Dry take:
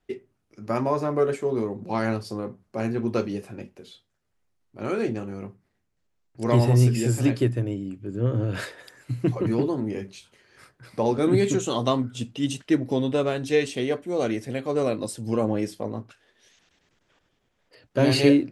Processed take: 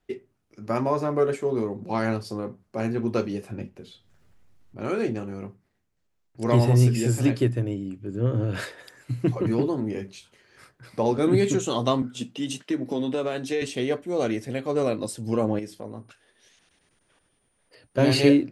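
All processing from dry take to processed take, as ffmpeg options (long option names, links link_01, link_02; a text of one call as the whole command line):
ffmpeg -i in.wav -filter_complex "[0:a]asettb=1/sr,asplit=3[link_01][link_02][link_03];[link_01]atrim=end=3.514[link_04];[link_02]atrim=start=3.51:end=4.81,asetpts=PTS-STARTPTS,afade=type=in:duration=0.004:curve=qsin,afade=type=out:start_time=1.296:duration=0.004:curve=qsin,acompressor=mode=upward:threshold=-50dB:ratio=2.5:attack=3.2:release=140:knee=2.83:detection=peak,bass=frequency=250:gain=7,treble=frequency=4000:gain=-3[link_05];[link_03]atrim=start=4.806[link_06];[link_04][link_05]acrossfade=duration=0.004:curve1=hsin:curve2=qsin[link_07];[link_07][link_06]acrossfade=duration=0.004:curve1=qsin:curve2=hsin,asettb=1/sr,asplit=3[link_08][link_09][link_10];[link_08]atrim=end=12.024[link_11];[link_09]atrim=start=12.02:end=13.62,asetpts=PTS-STARTPTS,afade=type=in:duration=0.004:curve=qsin,afade=type=out:start_time=1.596:duration=0.004:curve=qsin,highpass=frequency=160:width=0.5412,highpass=frequency=160:width=1.3066,acompressor=threshold=-22dB:ratio=5:attack=3.2:release=140:knee=1:detection=peak,asplit=2[link_12][link_13];[link_13]adelay=16,volume=-12.5dB[link_14];[link_12][link_14]amix=inputs=2:normalize=0,atrim=end_sample=70560[link_15];[link_10]atrim=start=13.616[link_16];[link_11][link_15]acrossfade=duration=0.004:curve1=hsin:curve2=qsin[link_17];[link_17][link_16]acrossfade=duration=0.004:curve1=qsin:curve2=hsin,asettb=1/sr,asplit=3[link_18][link_19][link_20];[link_18]atrim=end=15.594[link_21];[link_19]atrim=start=15.59:end=17.98,asetpts=PTS-STARTPTS,afade=type=in:duration=0.004:curve=qsin,afade=type=out:start_time=2.386:duration=0.004:curve=qsin,acompressor=threshold=-43dB:ratio=1.5:attack=3.2:release=140:knee=1:detection=peak,aeval=exprs='val(0)+0.000251*sin(2*PI*9300*n/s)':channel_layout=same[link_22];[link_20]atrim=start=17.976[link_23];[link_21][link_22]acrossfade=duration=0.004:curve1=hsin:curve2=qsin[link_24];[link_24][link_23]acrossfade=duration=0.004:curve1=qsin:curve2=hsin" out.wav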